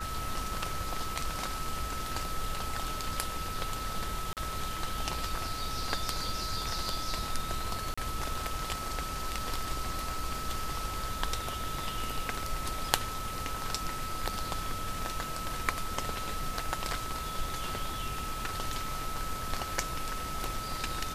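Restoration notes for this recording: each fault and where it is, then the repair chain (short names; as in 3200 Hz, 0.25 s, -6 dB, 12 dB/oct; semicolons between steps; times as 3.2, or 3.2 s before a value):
tone 1300 Hz -38 dBFS
4.33–4.37 gap 38 ms
7.94–7.97 gap 35 ms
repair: notch 1300 Hz, Q 30; interpolate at 4.33, 38 ms; interpolate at 7.94, 35 ms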